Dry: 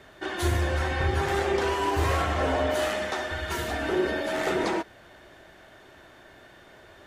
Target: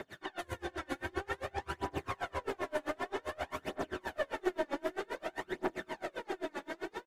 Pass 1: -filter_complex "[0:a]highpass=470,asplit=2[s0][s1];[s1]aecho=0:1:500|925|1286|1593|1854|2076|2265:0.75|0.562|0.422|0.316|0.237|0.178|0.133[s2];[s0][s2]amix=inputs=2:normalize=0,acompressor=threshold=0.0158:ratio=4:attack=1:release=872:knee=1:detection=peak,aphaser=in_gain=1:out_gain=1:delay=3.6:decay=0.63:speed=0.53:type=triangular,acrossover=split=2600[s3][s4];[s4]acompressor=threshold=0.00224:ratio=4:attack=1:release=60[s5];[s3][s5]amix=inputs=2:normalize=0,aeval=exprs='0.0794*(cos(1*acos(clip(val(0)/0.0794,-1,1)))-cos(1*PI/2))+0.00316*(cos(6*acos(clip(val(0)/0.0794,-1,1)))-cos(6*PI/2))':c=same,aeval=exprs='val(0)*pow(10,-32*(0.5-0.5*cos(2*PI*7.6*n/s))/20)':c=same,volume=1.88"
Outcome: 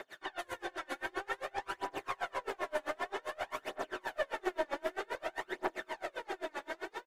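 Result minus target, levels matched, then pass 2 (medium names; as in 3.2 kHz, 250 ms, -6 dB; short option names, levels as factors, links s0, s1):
125 Hz band -14.0 dB
-filter_complex "[0:a]highpass=150,asplit=2[s0][s1];[s1]aecho=0:1:500|925|1286|1593|1854|2076|2265:0.75|0.562|0.422|0.316|0.237|0.178|0.133[s2];[s0][s2]amix=inputs=2:normalize=0,acompressor=threshold=0.0158:ratio=4:attack=1:release=872:knee=1:detection=peak,aphaser=in_gain=1:out_gain=1:delay=3.6:decay=0.63:speed=0.53:type=triangular,acrossover=split=2600[s3][s4];[s4]acompressor=threshold=0.00224:ratio=4:attack=1:release=60[s5];[s3][s5]amix=inputs=2:normalize=0,aeval=exprs='0.0794*(cos(1*acos(clip(val(0)/0.0794,-1,1)))-cos(1*PI/2))+0.00316*(cos(6*acos(clip(val(0)/0.0794,-1,1)))-cos(6*PI/2))':c=same,aeval=exprs='val(0)*pow(10,-32*(0.5-0.5*cos(2*PI*7.6*n/s))/20)':c=same,volume=1.88"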